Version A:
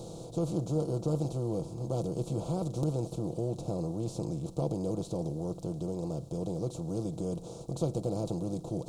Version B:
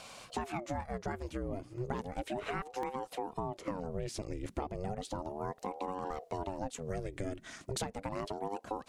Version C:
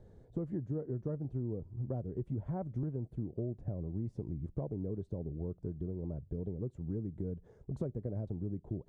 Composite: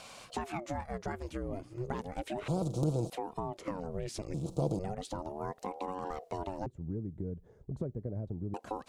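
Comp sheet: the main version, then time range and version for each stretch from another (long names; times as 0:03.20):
B
0:02.48–0:03.10: punch in from A
0:04.34–0:04.79: punch in from A
0:06.66–0:08.54: punch in from C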